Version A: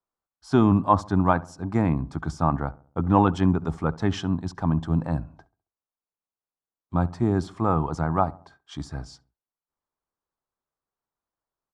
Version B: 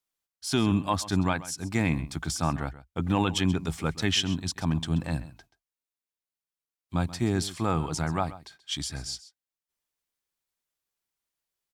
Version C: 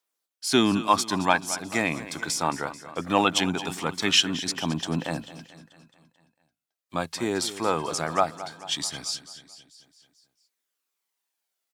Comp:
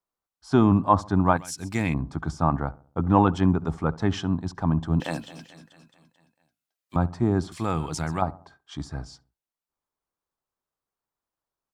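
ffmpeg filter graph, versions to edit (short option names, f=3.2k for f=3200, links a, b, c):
-filter_complex "[1:a]asplit=2[a][b];[0:a]asplit=4[c][d][e][f];[c]atrim=end=1.372[g];[a]atrim=start=1.368:end=1.942[h];[d]atrim=start=1.938:end=5.002[i];[2:a]atrim=start=4.998:end=6.962[j];[e]atrim=start=6.958:end=7.522[k];[b]atrim=start=7.518:end=8.222[l];[f]atrim=start=8.218[m];[g][h]acrossfade=d=0.004:c1=hsin:c2=hsin[n];[n][i]acrossfade=d=0.004:c1=hsin:c2=hsin[o];[o][j]acrossfade=d=0.004:c1=hsin:c2=hsin[p];[p][k]acrossfade=d=0.004:c1=hsin:c2=hsin[q];[q][l]acrossfade=d=0.004:c1=hsin:c2=hsin[r];[r][m]acrossfade=d=0.004:c1=hsin:c2=hsin"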